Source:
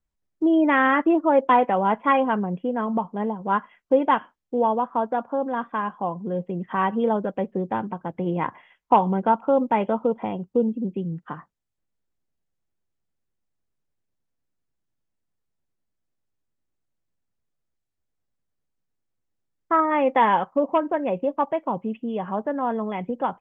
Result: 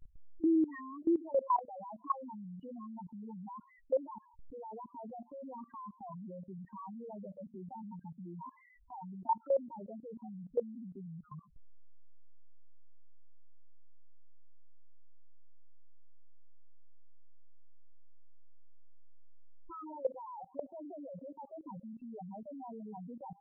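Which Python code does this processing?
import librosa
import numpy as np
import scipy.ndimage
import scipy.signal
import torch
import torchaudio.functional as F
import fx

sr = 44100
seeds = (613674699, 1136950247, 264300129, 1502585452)

y = x + 0.5 * 10.0 ** (-30.5 / 20.0) * np.sign(x)
y = fx.lowpass(y, sr, hz=1200.0, slope=12, at=(19.82, 20.27))
y = fx.spec_topn(y, sr, count=2)
y = fx.level_steps(y, sr, step_db=19)
y = y * 10.0 ** (-7.5 / 20.0)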